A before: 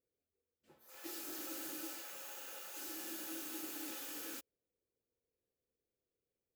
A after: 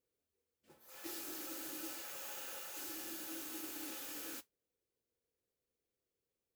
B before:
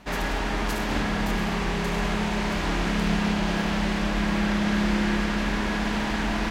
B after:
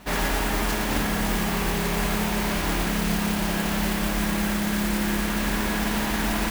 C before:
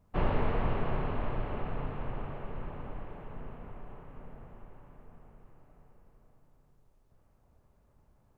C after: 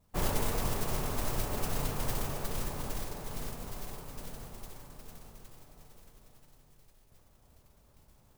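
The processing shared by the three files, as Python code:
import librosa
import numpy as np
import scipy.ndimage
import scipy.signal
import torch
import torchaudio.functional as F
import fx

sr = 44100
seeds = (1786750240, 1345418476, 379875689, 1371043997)

y = fx.rider(x, sr, range_db=3, speed_s=0.5)
y = fx.mod_noise(y, sr, seeds[0], snr_db=10)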